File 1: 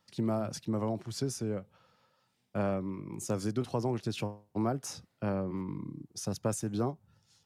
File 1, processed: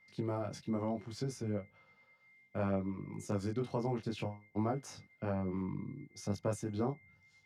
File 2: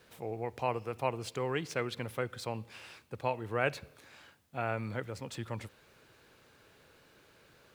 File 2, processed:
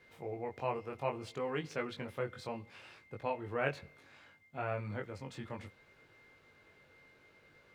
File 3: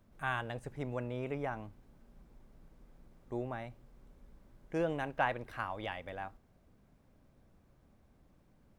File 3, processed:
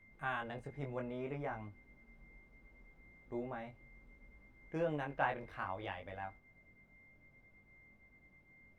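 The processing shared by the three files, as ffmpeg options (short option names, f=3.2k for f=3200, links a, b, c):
-af "aeval=exprs='val(0)+0.001*sin(2*PI*2100*n/s)':c=same,flanger=delay=19.5:depth=2.4:speed=0.64,highshelf=f=5.9k:g=-12"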